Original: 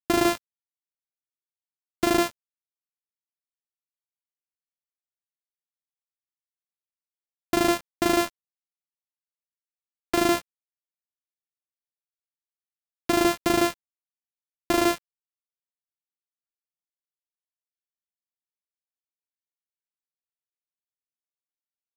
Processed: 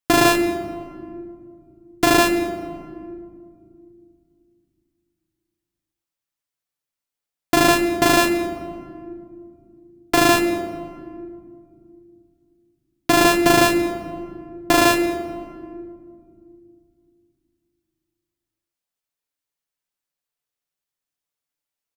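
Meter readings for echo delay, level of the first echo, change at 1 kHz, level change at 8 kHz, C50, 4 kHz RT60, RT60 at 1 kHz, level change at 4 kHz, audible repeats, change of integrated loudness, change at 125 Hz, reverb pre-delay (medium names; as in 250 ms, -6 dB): 217 ms, -20.5 dB, +8.5 dB, +8.5 dB, 8.5 dB, 1.0 s, 1.9 s, +8.5 dB, 1, +6.5 dB, +10.0 dB, 7 ms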